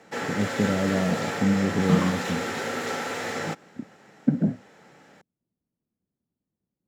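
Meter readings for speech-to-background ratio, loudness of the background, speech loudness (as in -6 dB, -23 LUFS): 2.5 dB, -29.0 LUFS, -26.5 LUFS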